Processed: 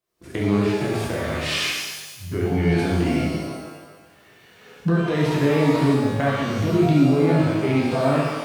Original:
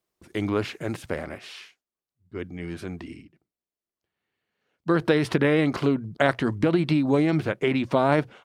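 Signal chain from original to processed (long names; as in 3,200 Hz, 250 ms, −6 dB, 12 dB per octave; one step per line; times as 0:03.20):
camcorder AGC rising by 59 dB per second
harmonic and percussive parts rebalanced percussive −12 dB
reverb with rising layers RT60 1.3 s, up +12 semitones, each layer −8 dB, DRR −4 dB
level −2.5 dB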